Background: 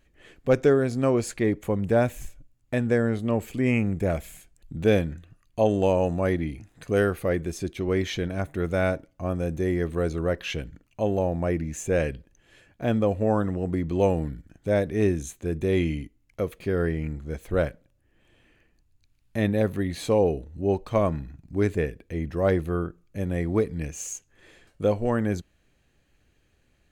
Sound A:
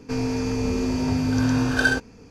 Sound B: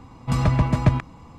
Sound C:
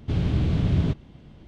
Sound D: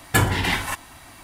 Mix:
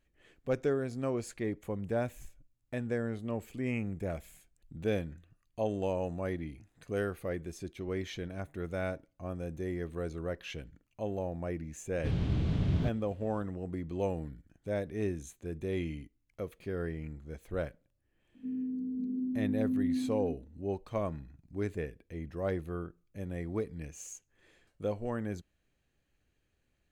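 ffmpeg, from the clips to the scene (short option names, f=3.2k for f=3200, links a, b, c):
-filter_complex "[0:a]volume=-11dB[a];[1:a]asuperpass=centerf=240:order=4:qfactor=2.8[b];[3:a]atrim=end=1.47,asetpts=PTS-STARTPTS,volume=-7.5dB,afade=t=in:d=0.004:c=hsin,afade=t=out:st=1.466:d=0.004:c=hsin,adelay=11960[c];[b]atrim=end=2.3,asetpts=PTS-STARTPTS,volume=-8dB,afade=t=in:d=0.004:c=hsin,afade=t=out:st=2.296:d=0.004:c=hsin,adelay=18340[d];[a][c][d]amix=inputs=3:normalize=0"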